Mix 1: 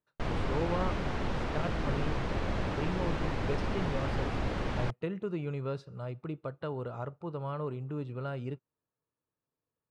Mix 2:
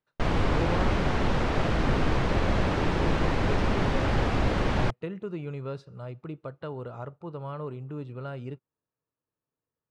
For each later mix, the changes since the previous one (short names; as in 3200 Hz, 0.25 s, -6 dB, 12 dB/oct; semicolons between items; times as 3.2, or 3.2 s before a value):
background +7.5 dB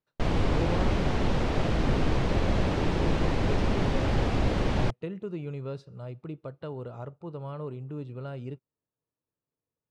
master: add bell 1400 Hz -5 dB 1.6 oct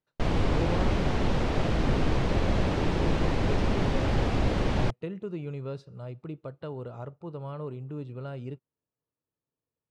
none